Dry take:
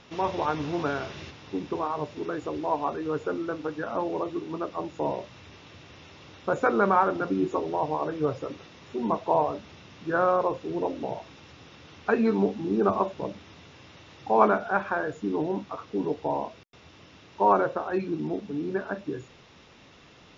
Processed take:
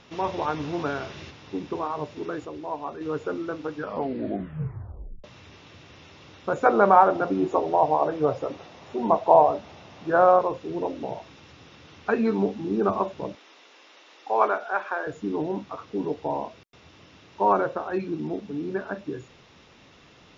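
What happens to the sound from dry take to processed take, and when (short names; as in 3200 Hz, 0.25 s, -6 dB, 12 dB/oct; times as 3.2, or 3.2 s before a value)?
2.45–3.01 gain -5 dB
3.75 tape stop 1.49 s
6.65–10.39 bell 710 Hz +10 dB 0.96 oct
13.35–15.07 Bessel high-pass 470 Hz, order 6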